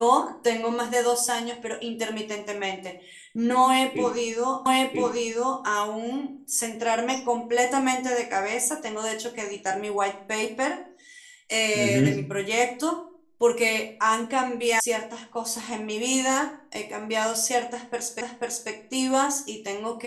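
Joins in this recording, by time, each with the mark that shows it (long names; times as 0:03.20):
0:04.66: the same again, the last 0.99 s
0:14.80: cut off before it has died away
0:18.21: the same again, the last 0.49 s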